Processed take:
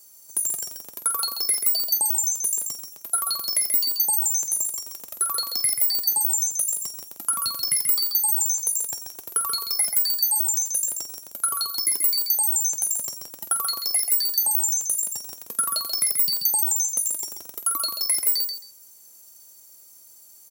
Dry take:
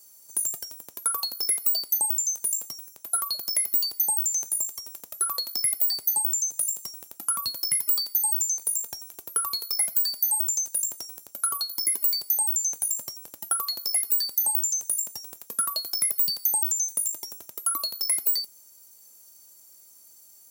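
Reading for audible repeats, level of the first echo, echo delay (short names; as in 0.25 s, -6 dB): 2, -6.0 dB, 0.134 s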